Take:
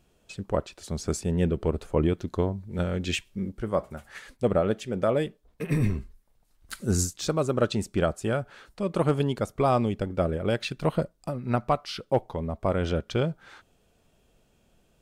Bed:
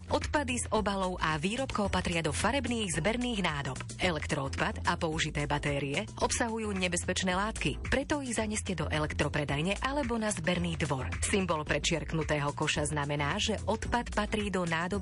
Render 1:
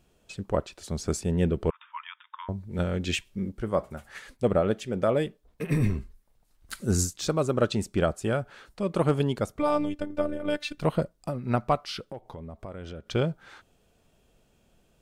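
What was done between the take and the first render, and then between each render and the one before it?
0:01.70–0:02.49: linear-phase brick-wall band-pass 890–3,700 Hz
0:09.59–0:10.78: phases set to zero 295 Hz
0:12.01–0:13.09: downward compressor 4 to 1, threshold −38 dBFS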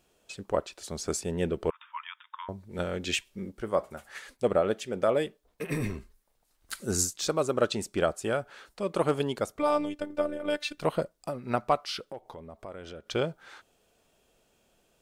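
bass and treble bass −10 dB, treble +2 dB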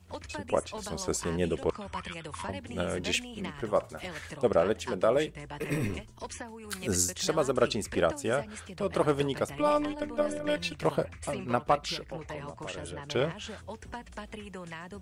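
mix in bed −11 dB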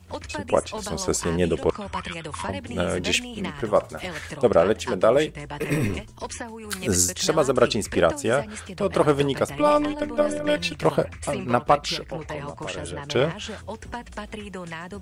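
level +7 dB

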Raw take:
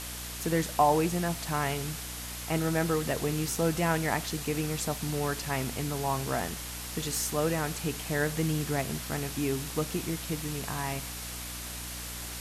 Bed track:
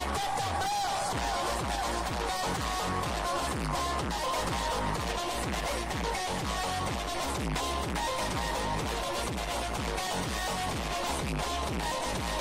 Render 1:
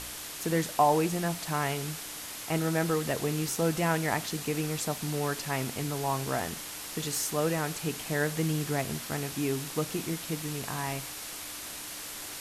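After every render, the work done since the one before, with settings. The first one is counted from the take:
hum removal 60 Hz, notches 4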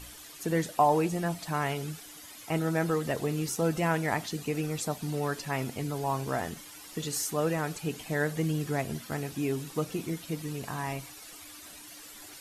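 broadband denoise 12 dB, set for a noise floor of −41 dBFS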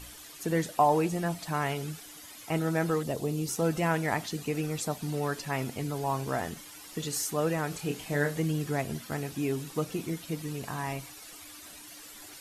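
0:03.03–0:03.49: parametric band 1,700 Hz −12 dB 1.2 octaves
0:07.69–0:08.40: double-tracking delay 28 ms −6 dB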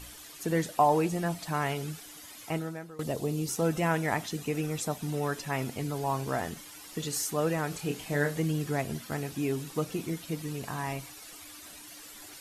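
0:02.47–0:02.99: fade out quadratic, to −20 dB
0:03.64–0:05.62: notch filter 4,500 Hz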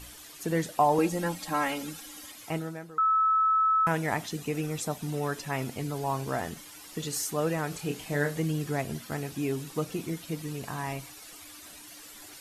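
0:00.98–0:02.32: comb filter 3.7 ms, depth 94%
0:02.98–0:03.87: beep over 1,300 Hz −20.5 dBFS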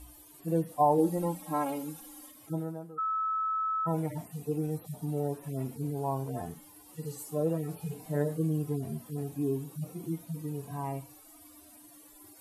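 harmonic-percussive split with one part muted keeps harmonic
flat-topped bell 3,100 Hz −11 dB 2.7 octaves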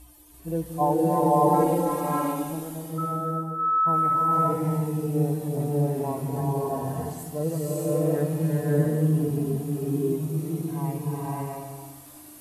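slow-attack reverb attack 630 ms, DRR −6.5 dB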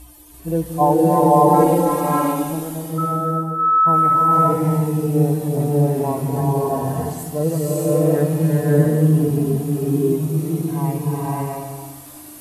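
level +7.5 dB
brickwall limiter −3 dBFS, peak gain reduction 1.5 dB

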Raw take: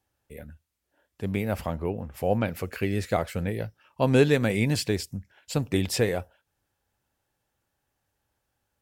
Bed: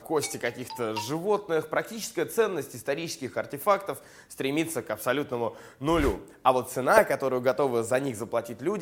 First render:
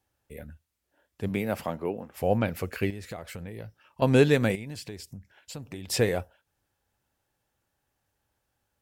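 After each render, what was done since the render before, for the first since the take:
0:01.28–0:02.16: high-pass filter 120 Hz → 270 Hz
0:02.90–0:04.02: downward compressor 4 to 1, threshold −36 dBFS
0:04.55–0:05.90: downward compressor 3 to 1, threshold −40 dBFS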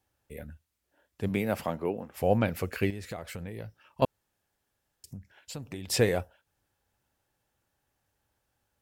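0:04.05–0:05.04: fill with room tone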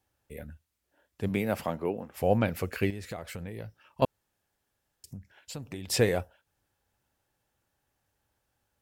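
no processing that can be heard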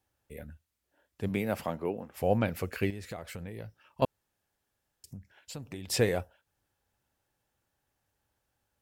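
level −2 dB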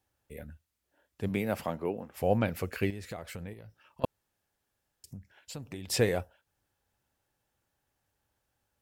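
0:03.53–0:04.04: downward compressor, threshold −45 dBFS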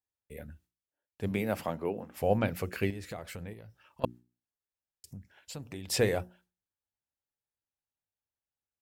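noise gate with hold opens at −58 dBFS
mains-hum notches 60/120/180/240/300/360 Hz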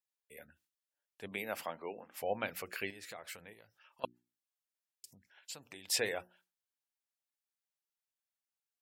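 high-pass filter 1,300 Hz 6 dB per octave
gate on every frequency bin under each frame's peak −30 dB strong

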